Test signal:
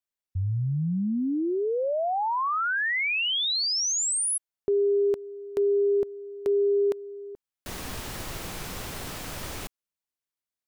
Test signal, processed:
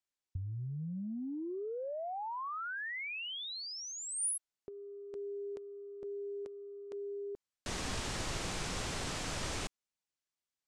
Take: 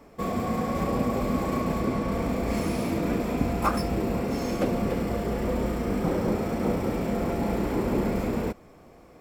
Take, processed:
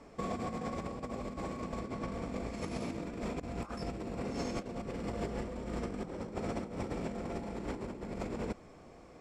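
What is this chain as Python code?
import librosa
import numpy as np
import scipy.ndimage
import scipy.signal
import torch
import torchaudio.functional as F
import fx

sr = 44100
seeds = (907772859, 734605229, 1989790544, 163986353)

y = scipy.signal.sosfilt(scipy.signal.butter(4, 8300.0, 'lowpass', fs=sr, output='sos'), x)
y = fx.high_shelf(y, sr, hz=4900.0, db=4.0)
y = fx.over_compress(y, sr, threshold_db=-30.0, ratio=-0.5)
y = y * librosa.db_to_amplitude(-7.5)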